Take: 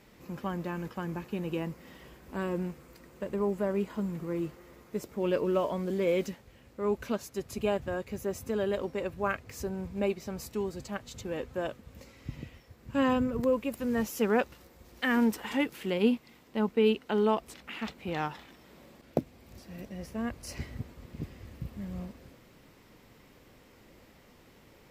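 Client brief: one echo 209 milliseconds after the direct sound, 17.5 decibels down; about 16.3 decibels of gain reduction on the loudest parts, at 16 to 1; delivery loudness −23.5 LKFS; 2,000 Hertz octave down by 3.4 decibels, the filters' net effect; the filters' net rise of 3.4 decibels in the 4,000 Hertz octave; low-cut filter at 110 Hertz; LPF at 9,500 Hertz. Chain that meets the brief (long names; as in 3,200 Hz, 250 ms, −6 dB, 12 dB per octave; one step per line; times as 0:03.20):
high-pass filter 110 Hz
low-pass filter 9,500 Hz
parametric band 2,000 Hz −6.5 dB
parametric band 4,000 Hz +8.5 dB
downward compressor 16 to 1, threshold −36 dBFS
single-tap delay 209 ms −17.5 dB
level +19 dB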